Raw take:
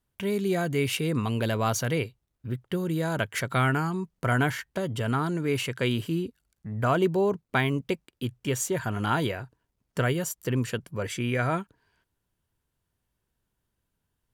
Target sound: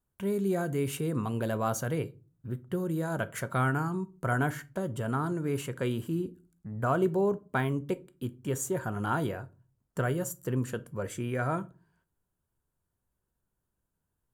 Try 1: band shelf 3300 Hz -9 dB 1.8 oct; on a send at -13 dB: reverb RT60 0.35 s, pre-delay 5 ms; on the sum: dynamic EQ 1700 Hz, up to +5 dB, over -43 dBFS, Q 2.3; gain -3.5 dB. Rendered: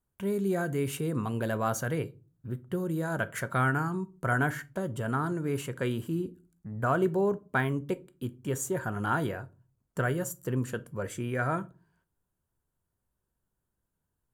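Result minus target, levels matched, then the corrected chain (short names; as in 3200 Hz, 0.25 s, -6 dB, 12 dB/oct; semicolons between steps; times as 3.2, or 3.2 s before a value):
2000 Hz band +3.0 dB
band shelf 3300 Hz -9 dB 1.8 oct; on a send at -13 dB: reverb RT60 0.35 s, pre-delay 5 ms; on the sum: gain -3.5 dB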